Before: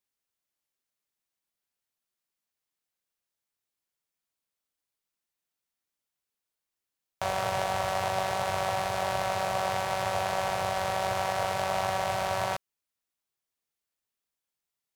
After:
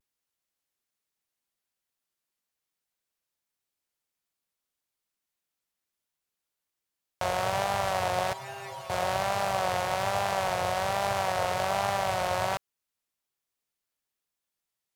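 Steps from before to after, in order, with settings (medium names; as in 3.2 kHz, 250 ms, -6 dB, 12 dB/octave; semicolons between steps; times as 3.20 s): vibrato 1.2 Hz 74 cents; 8.33–8.90 s: inharmonic resonator 130 Hz, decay 0.3 s, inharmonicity 0.002; trim +1 dB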